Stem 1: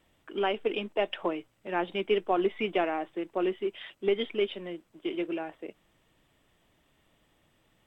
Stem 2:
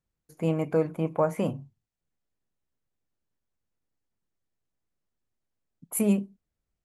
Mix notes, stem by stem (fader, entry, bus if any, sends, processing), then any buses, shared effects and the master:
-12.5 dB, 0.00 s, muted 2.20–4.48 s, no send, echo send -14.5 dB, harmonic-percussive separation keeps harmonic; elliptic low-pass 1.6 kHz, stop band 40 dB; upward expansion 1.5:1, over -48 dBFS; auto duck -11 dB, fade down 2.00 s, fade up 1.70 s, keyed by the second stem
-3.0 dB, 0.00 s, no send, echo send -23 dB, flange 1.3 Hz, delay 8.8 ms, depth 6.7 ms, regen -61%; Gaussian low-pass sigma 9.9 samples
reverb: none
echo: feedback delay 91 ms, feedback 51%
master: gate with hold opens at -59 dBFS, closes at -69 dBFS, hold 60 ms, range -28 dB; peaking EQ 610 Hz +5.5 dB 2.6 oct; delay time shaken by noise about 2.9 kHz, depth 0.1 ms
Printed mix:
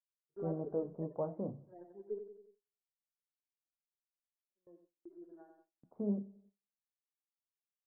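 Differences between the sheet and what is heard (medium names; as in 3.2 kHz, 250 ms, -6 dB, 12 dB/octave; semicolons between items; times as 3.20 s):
stem 2 -3.0 dB -> -10.0 dB; master: missing delay time shaken by noise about 2.9 kHz, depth 0.1 ms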